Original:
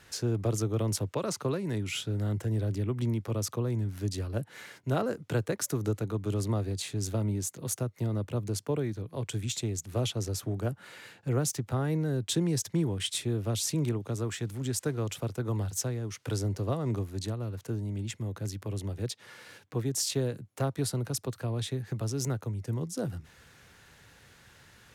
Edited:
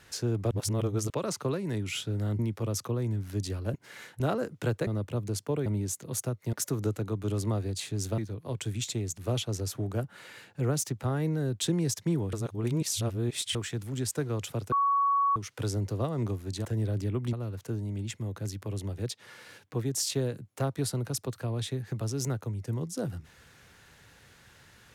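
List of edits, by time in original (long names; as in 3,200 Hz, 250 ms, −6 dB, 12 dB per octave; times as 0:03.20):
0:00.51–0:01.10: reverse
0:02.39–0:03.07: move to 0:17.33
0:04.42–0:04.88: reverse
0:05.55–0:07.20: swap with 0:08.07–0:08.86
0:13.01–0:14.23: reverse
0:15.40–0:16.04: beep over 1,120 Hz −22 dBFS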